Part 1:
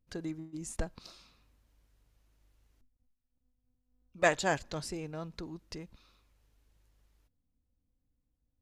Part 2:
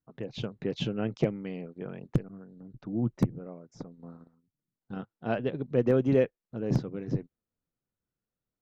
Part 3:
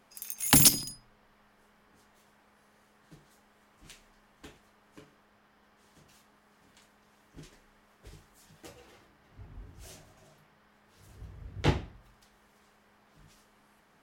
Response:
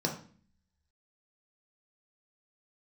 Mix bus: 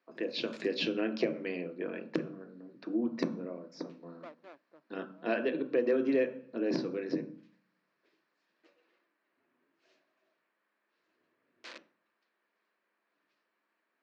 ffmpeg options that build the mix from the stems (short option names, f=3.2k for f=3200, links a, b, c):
-filter_complex "[0:a]lowpass=f=1k:w=0.5412,lowpass=f=1k:w=1.3066,aeval=exprs='clip(val(0),-1,0.0266)':c=same,volume=-15dB[a];[1:a]volume=0dB,asplit=3[b][c][d];[c]volume=-5.5dB[e];[2:a]alimiter=limit=-18.5dB:level=0:latency=1:release=38,lowpass=f=1.4k:p=1,aeval=exprs='(mod(28.2*val(0)+1,2)-1)/28.2':c=same,volume=-13.5dB,asplit=2[f][g];[g]volume=-20dB[h];[d]apad=whole_len=618690[i];[f][i]sidechaincompress=threshold=-36dB:ratio=8:attack=16:release=168[j];[3:a]atrim=start_sample=2205[k];[e][h]amix=inputs=2:normalize=0[l];[l][k]afir=irnorm=-1:irlink=0[m];[a][b][j][m]amix=inputs=4:normalize=0,highpass=f=300:w=0.5412,highpass=f=300:w=1.3066,equalizer=f=440:t=q:w=4:g=-8,equalizer=f=790:t=q:w=4:g=-10,equalizer=f=1.7k:t=q:w=4:g=4,equalizer=f=2.5k:t=q:w=4:g=6,equalizer=f=4.1k:t=q:w=4:g=5,lowpass=f=6k:w=0.5412,lowpass=f=6k:w=1.3066,acompressor=threshold=-28dB:ratio=2.5"